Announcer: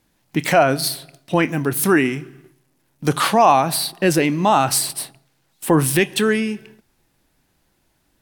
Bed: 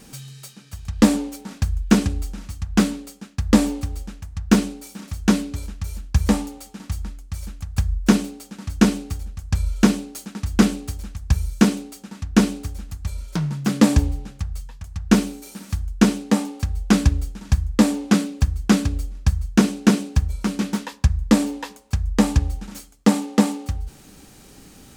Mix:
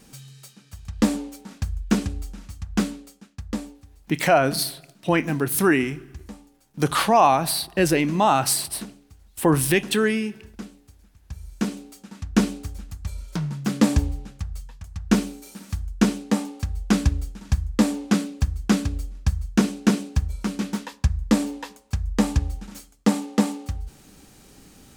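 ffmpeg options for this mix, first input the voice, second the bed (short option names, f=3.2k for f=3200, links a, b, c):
-filter_complex "[0:a]adelay=3750,volume=-3dB[a];[1:a]volume=13dB,afade=t=out:st=2.82:d=0.97:silence=0.149624,afade=t=in:st=11.25:d=0.94:silence=0.11885[b];[a][b]amix=inputs=2:normalize=0"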